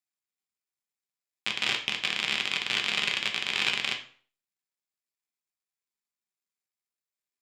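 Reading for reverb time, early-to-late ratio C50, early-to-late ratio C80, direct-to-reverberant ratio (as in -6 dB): 0.45 s, 10.0 dB, 15.0 dB, 2.0 dB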